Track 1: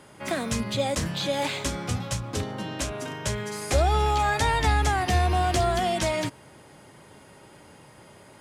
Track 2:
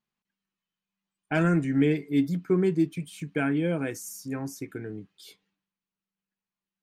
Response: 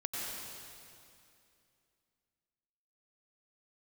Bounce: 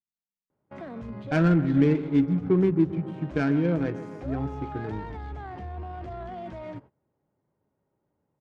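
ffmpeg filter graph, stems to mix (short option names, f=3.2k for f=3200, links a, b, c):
-filter_complex "[0:a]alimiter=limit=-24dB:level=0:latency=1:release=14,adelay=500,volume=-4.5dB[a];[1:a]lowshelf=f=150:g=7,volume=0.5dB,asplit=3[b][c][d];[c]volume=-13.5dB[e];[d]apad=whole_len=392787[f];[a][f]sidechaincompress=threshold=-23dB:ratio=8:attack=16:release=666[g];[e]aecho=0:1:136|272|408|544|680|816|952|1088|1224:1|0.59|0.348|0.205|0.121|0.0715|0.0422|0.0249|0.0147[h];[g][b][h]amix=inputs=3:normalize=0,agate=range=-20dB:threshold=-46dB:ratio=16:detection=peak,adynamicsmooth=sensitivity=1.5:basefreq=1k"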